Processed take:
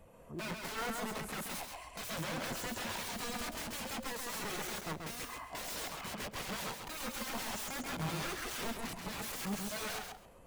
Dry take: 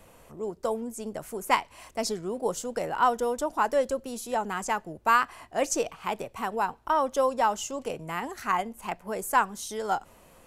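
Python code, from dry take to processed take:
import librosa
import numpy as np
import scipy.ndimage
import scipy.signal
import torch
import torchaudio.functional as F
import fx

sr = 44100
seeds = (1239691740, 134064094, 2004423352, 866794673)

p1 = fx.tube_stage(x, sr, drive_db=22.0, bias=0.35)
p2 = (np.mod(10.0 ** (36.5 / 20.0) * p1 + 1.0, 2.0) - 1.0) / 10.0 ** (36.5 / 20.0)
p3 = p2 + fx.echo_feedback(p2, sr, ms=134, feedback_pct=27, wet_db=-3, dry=0)
p4 = fx.spectral_expand(p3, sr, expansion=1.5)
y = F.gain(torch.from_numpy(p4), 3.0).numpy()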